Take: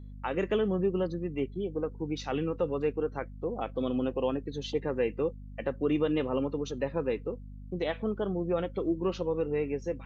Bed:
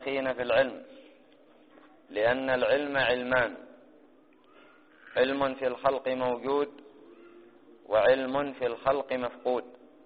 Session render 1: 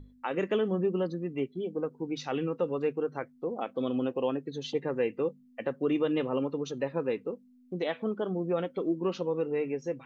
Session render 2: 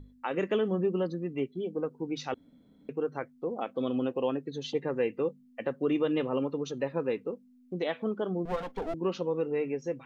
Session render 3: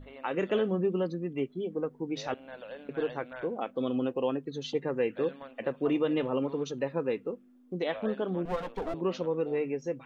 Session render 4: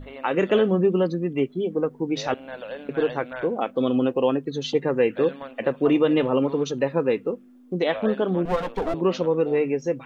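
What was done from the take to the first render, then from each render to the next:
mains-hum notches 50/100/150/200 Hz
0:02.34–0:02.89: fill with room tone; 0:08.45–0:08.94: lower of the sound and its delayed copy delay 4.3 ms
mix in bed −18.5 dB
level +8.5 dB

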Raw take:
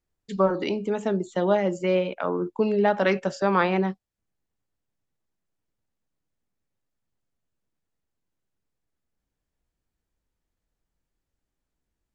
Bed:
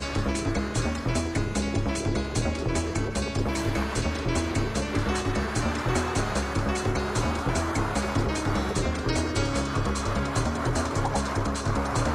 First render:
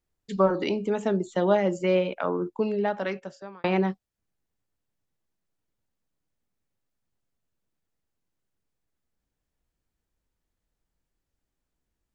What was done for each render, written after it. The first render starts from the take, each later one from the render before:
0:02.19–0:03.64: fade out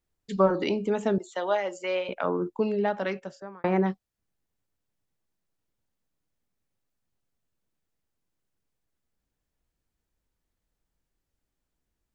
0:01.18–0:02.09: high-pass filter 660 Hz
0:03.40–0:03.86: flat-topped bell 3,600 Hz −12 dB 1.3 octaves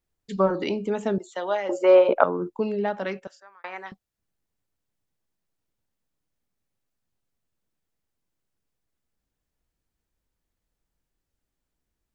0:01.69–0:02.24: flat-topped bell 620 Hz +14.5 dB 2.7 octaves
0:03.27–0:03.92: high-pass filter 1,200 Hz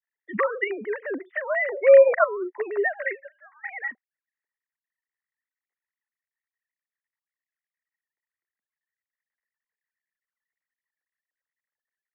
three sine waves on the formant tracks
low-pass with resonance 1,900 Hz, resonance Q 12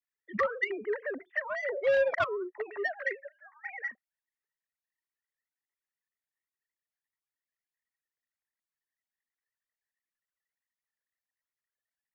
soft clipping −15.5 dBFS, distortion −8 dB
flanger whose copies keep moving one way rising 1.4 Hz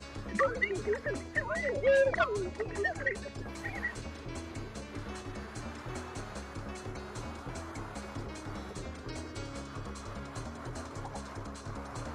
mix in bed −15 dB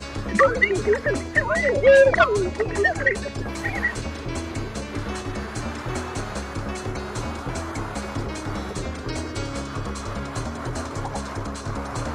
level +12 dB

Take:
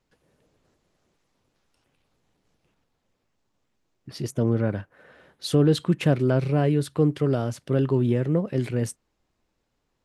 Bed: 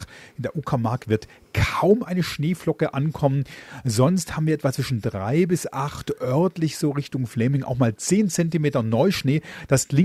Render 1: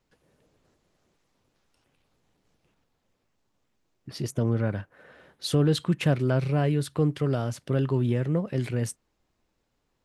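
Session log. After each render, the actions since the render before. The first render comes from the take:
dynamic equaliser 350 Hz, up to −5 dB, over −30 dBFS, Q 0.73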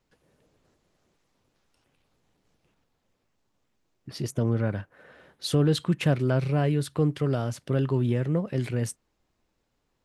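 no processing that can be heard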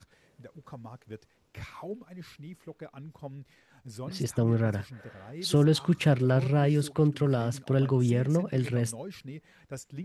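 mix in bed −21.5 dB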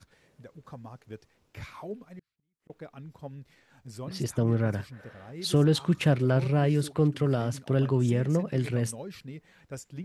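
0:02.19–0:02.70: gate with flip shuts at −41 dBFS, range −38 dB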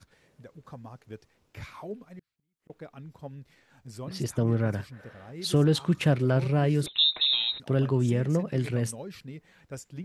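0:06.86–0:07.60: voice inversion scrambler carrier 3,900 Hz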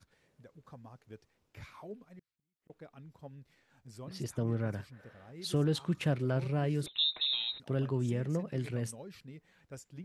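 level −7.5 dB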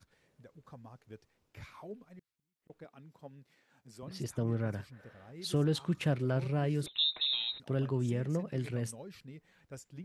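0:02.84–0:04.03: high-pass filter 160 Hz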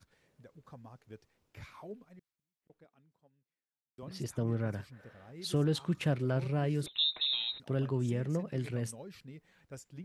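0:01.90–0:03.98: fade out quadratic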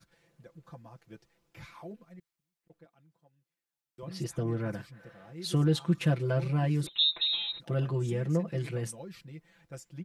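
comb filter 5.9 ms, depth 93%

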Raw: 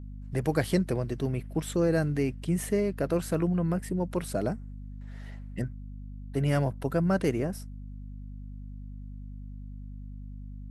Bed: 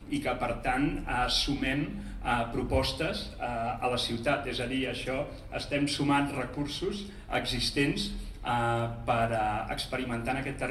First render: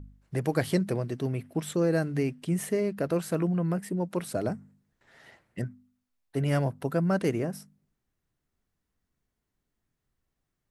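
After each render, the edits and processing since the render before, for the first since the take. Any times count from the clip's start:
hum removal 50 Hz, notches 5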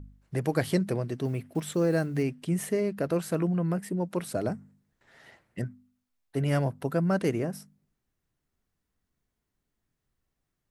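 0:01.25–0:02.23: one scale factor per block 7 bits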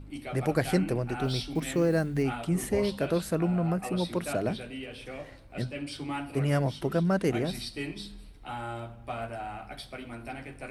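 mix in bed −8.5 dB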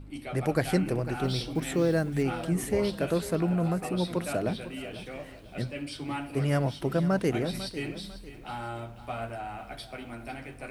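feedback echo at a low word length 498 ms, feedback 35%, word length 9 bits, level −14 dB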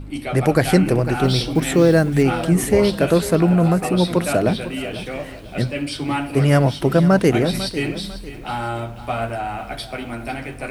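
level +11.5 dB
brickwall limiter −3 dBFS, peak gain reduction 2.5 dB

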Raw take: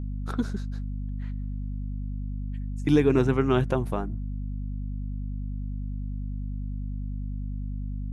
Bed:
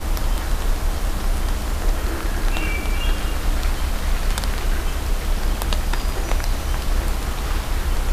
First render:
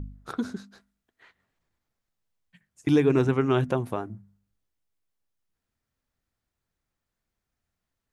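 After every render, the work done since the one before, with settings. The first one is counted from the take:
hum removal 50 Hz, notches 5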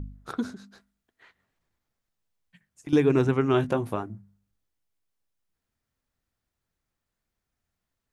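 0:00.50–0:02.93: downward compressor 2.5 to 1, threshold −40 dBFS
0:03.52–0:04.03: double-tracking delay 19 ms −7.5 dB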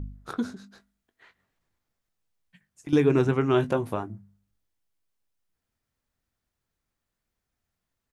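double-tracking delay 21 ms −13.5 dB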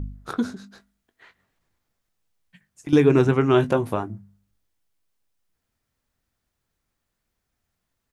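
level +4.5 dB

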